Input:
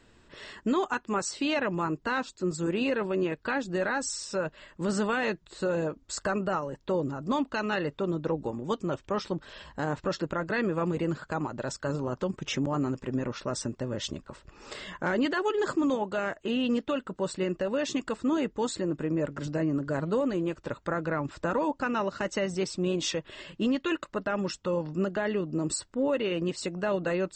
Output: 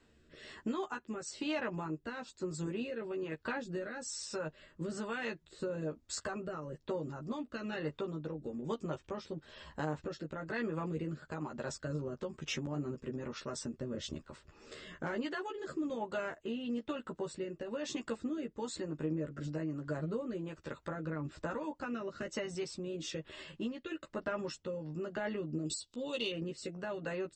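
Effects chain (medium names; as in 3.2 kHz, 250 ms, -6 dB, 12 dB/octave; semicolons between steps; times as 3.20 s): 25.65–26.31 s: resonant high shelf 2.5 kHz +11.5 dB, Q 3; compression 5:1, threshold -29 dBFS, peak gain reduction 13.5 dB; rotary cabinet horn 1.1 Hz; Chebyshev shaper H 3 -25 dB, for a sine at -20 dBFS; doubling 13 ms -3.5 dB; trim -4 dB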